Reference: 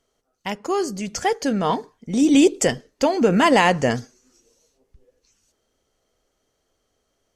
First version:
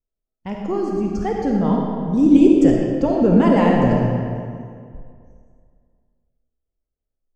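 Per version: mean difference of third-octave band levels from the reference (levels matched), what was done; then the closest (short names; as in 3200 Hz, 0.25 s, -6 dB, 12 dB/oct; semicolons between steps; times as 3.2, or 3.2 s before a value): 10.0 dB: spectral noise reduction 23 dB; tilt -4.5 dB/oct; digital reverb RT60 2.2 s, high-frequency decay 0.7×, pre-delay 10 ms, DRR -1 dB; gain -7 dB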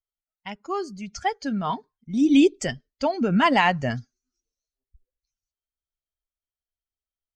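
7.5 dB: per-bin expansion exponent 1.5; LPF 4300 Hz 12 dB/oct; bell 490 Hz -14.5 dB 0.27 oct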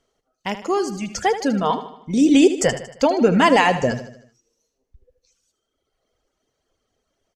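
3.5 dB: reverb removal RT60 1.9 s; high shelf 10000 Hz -11 dB; feedback echo 77 ms, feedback 50%, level -12 dB; gain +2 dB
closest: third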